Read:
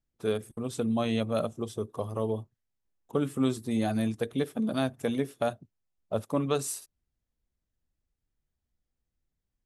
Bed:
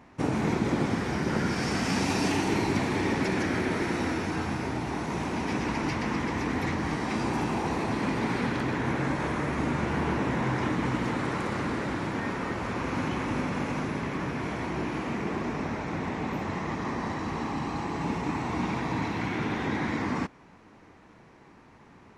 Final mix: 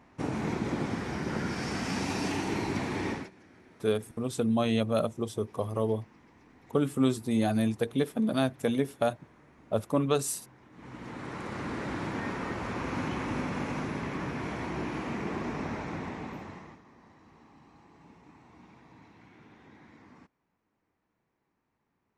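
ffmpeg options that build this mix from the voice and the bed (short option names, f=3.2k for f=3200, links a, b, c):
-filter_complex "[0:a]adelay=3600,volume=1.5dB[a];[1:a]volume=21dB,afade=t=out:st=3.09:d=0.21:silence=0.0630957,afade=t=in:st=10.71:d=1.31:silence=0.0501187,afade=t=out:st=15.78:d=1.04:silence=0.0749894[b];[a][b]amix=inputs=2:normalize=0"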